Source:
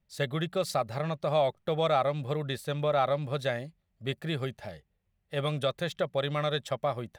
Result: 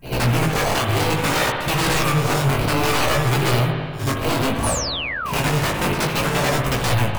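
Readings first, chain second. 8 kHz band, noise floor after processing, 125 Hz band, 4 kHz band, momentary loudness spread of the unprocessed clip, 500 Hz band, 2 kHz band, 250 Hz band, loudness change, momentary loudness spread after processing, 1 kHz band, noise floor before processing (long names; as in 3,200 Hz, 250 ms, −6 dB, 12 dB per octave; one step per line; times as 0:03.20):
+22.5 dB, −26 dBFS, +13.5 dB, +13.5 dB, 10 LU, +5.5 dB, +16.5 dB, +13.5 dB, +10.5 dB, 4 LU, +10.5 dB, −76 dBFS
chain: high-shelf EQ 7,900 Hz +5.5 dB
decimation without filtering 25×
downward compressor, threshold −30 dBFS, peak gain reduction 9 dB
all-pass phaser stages 4, 1.2 Hz, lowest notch 270–1,500 Hz
sine wavefolder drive 19 dB, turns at −20 dBFS
on a send: backwards echo 75 ms −10.5 dB
on the sum: spring reverb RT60 1.9 s, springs 57 ms, chirp 60 ms, DRR 3 dB
sound drawn into the spectrogram fall, 0:04.63–0:05.32, 940–11,000 Hz −29 dBFS
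chorus effect 0.6 Hz, delay 15 ms, depth 6.3 ms
level +5.5 dB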